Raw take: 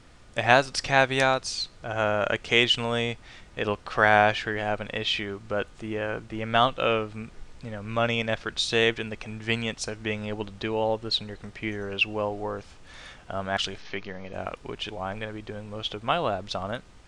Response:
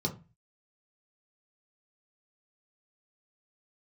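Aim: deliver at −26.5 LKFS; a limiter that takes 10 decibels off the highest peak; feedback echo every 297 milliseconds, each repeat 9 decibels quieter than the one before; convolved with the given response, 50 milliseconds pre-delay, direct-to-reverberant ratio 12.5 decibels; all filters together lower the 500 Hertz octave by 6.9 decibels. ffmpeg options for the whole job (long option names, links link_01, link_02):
-filter_complex "[0:a]equalizer=frequency=500:width_type=o:gain=-9,alimiter=limit=-12.5dB:level=0:latency=1,aecho=1:1:297|594|891|1188:0.355|0.124|0.0435|0.0152,asplit=2[link_01][link_02];[1:a]atrim=start_sample=2205,adelay=50[link_03];[link_02][link_03]afir=irnorm=-1:irlink=0,volume=-17dB[link_04];[link_01][link_04]amix=inputs=2:normalize=0,volume=2.5dB"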